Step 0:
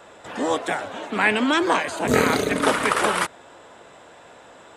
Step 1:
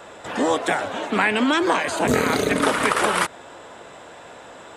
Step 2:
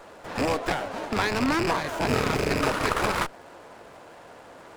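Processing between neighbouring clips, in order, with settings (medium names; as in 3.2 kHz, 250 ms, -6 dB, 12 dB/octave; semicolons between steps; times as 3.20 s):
compression 5:1, threshold -21 dBFS, peak gain reduction 8 dB; trim +5 dB
rattle on loud lows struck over -30 dBFS, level -10 dBFS; sliding maximum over 9 samples; trim -4.5 dB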